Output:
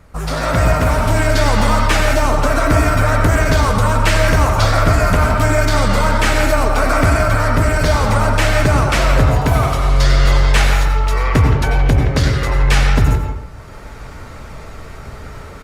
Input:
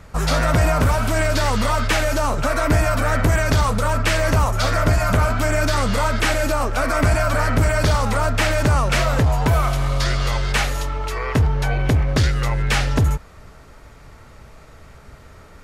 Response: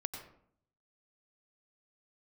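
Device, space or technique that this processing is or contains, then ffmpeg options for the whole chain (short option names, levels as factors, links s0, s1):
speakerphone in a meeting room: -filter_complex "[1:a]atrim=start_sample=2205[s0];[0:a][s0]afir=irnorm=-1:irlink=0,asplit=2[s1][s2];[s2]adelay=170,highpass=300,lowpass=3400,asoftclip=type=hard:threshold=0.211,volume=0.447[s3];[s1][s3]amix=inputs=2:normalize=0,dynaudnorm=f=270:g=3:m=3.76,volume=0.891" -ar 48000 -c:a libopus -b:a 32k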